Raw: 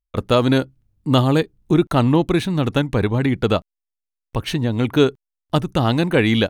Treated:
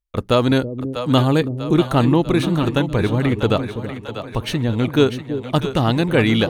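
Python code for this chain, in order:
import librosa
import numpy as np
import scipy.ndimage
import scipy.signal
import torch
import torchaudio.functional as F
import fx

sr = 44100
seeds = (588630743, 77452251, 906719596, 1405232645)

y = fx.echo_split(x, sr, split_hz=460.0, low_ms=328, high_ms=644, feedback_pct=52, wet_db=-9)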